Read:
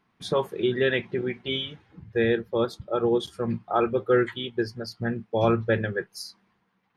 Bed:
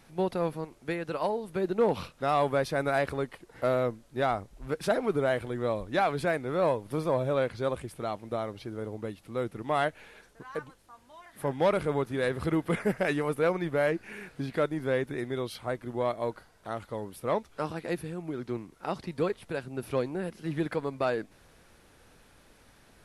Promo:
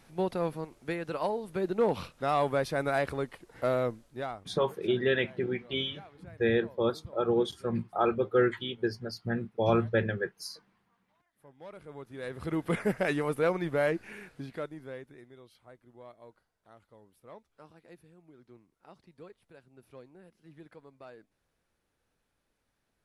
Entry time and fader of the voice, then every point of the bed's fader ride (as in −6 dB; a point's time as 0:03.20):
4.25 s, −3.5 dB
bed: 0:03.99 −1.5 dB
0:04.83 −25.5 dB
0:11.52 −25.5 dB
0:12.70 −1 dB
0:14.03 −1 dB
0:15.37 −21 dB